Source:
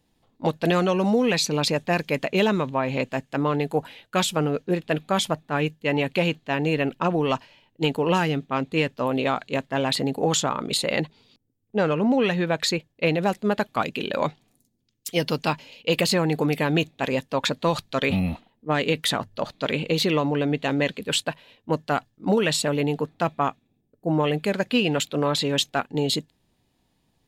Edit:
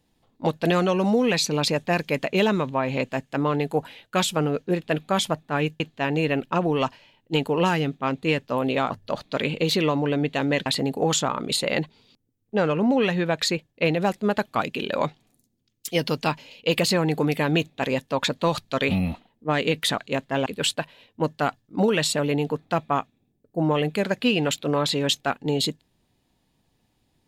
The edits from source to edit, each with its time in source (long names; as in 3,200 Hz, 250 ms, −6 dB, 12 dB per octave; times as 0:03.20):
0:05.80–0:06.29: remove
0:09.39–0:09.87: swap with 0:19.19–0:20.95